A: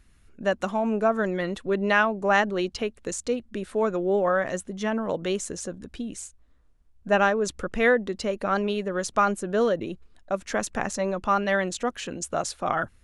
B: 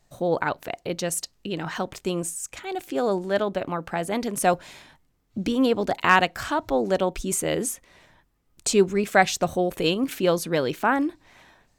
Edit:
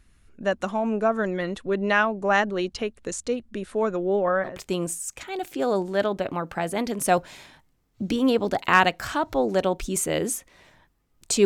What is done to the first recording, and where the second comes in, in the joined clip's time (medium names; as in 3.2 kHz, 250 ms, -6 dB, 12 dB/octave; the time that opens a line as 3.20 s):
A
4.04–4.60 s: low-pass 8.9 kHz -> 1.2 kHz
4.51 s: go over to B from 1.87 s, crossfade 0.18 s